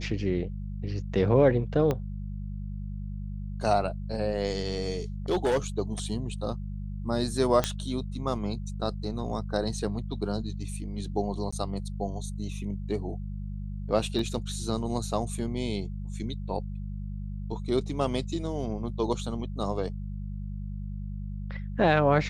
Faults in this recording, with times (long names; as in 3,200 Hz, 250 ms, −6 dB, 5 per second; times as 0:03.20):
mains hum 50 Hz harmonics 4 −35 dBFS
0:01.91: click −15 dBFS
0:05.30–0:05.58: clipping −20.5 dBFS
0:07.64: click −10 dBFS
0:11.51–0:11.53: drop-out 15 ms
0:14.19: drop-out 2.8 ms